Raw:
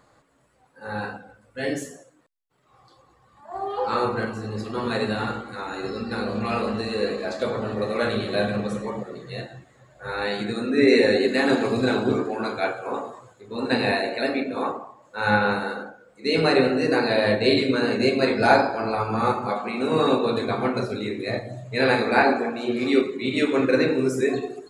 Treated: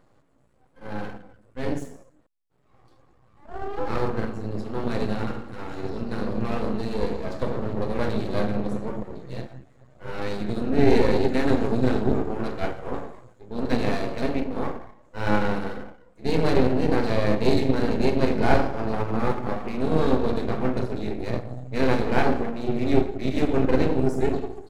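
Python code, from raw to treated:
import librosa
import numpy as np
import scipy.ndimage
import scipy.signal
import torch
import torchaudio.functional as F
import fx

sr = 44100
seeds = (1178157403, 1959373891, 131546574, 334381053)

y = np.maximum(x, 0.0)
y = fx.tilt_shelf(y, sr, db=6.5, hz=730.0)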